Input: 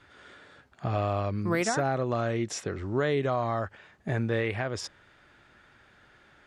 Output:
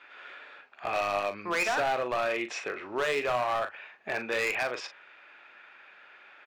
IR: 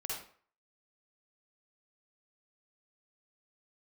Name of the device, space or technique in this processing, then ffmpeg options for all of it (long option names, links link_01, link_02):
megaphone: -filter_complex "[0:a]highpass=630,lowpass=3200,equalizer=frequency=2500:width_type=o:width=0.23:gain=12,asoftclip=type=hard:threshold=-29dB,asplit=2[link_01][link_02];[link_02]adelay=40,volume=-10dB[link_03];[link_01][link_03]amix=inputs=2:normalize=0,volume=5dB"